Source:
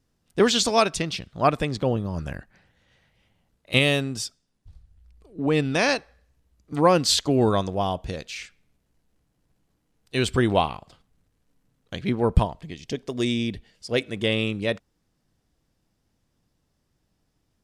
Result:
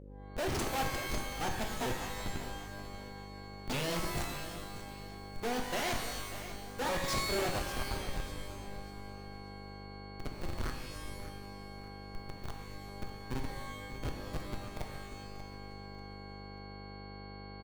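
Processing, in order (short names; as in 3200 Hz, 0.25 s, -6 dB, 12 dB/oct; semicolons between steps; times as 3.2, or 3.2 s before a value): repeated pitch sweeps +10 st, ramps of 0.627 s; Doppler pass-by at 3.67, 5 m/s, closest 7.5 m; low-pass opened by the level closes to 1600 Hz, open at -25 dBFS; level quantiser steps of 15 dB; Schmitt trigger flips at -39 dBFS; buzz 50 Hz, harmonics 11, -65 dBFS -4 dB/oct; sine folder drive 8 dB, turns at -33.5 dBFS; limiter -35.5 dBFS, peak gain reduction 4 dB; on a send: feedback echo 0.589 s, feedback 36%, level -13 dB; on the sum: shimmer reverb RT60 1 s, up +12 st, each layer -2 dB, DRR 4 dB; gain +2.5 dB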